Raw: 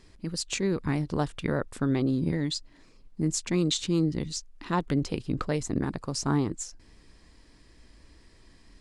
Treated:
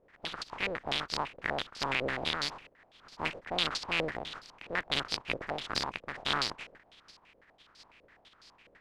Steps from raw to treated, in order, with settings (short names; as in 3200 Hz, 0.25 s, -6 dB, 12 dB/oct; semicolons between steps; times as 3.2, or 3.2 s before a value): spectral contrast lowered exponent 0.15; stepped low-pass 12 Hz 530–4700 Hz; gain -7 dB